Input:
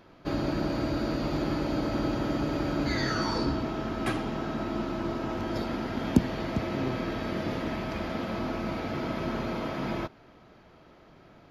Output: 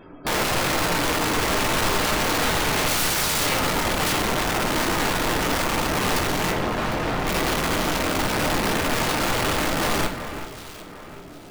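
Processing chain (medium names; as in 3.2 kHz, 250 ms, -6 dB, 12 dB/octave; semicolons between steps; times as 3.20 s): spectral gate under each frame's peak -20 dB strong; 0.89–1.45 s: bass shelf 150 Hz -7.5 dB; integer overflow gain 24.5 dB; small resonant body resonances 280/400/2600 Hz, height 7 dB, ringing for 95 ms; integer overflow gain 27.5 dB; 6.52–7.27 s: tape spacing loss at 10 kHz 21 dB; echo whose repeats swap between lows and highs 377 ms, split 2.5 kHz, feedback 59%, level -9.5 dB; reverberation RT60 0.60 s, pre-delay 7 ms, DRR 4 dB; trim +7.5 dB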